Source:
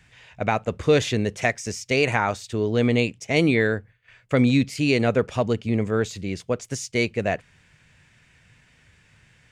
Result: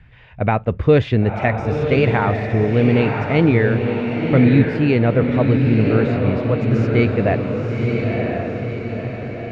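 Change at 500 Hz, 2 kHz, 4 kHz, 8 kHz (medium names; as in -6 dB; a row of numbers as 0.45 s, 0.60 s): +5.5 dB, +2.0 dB, -3.0 dB, under -15 dB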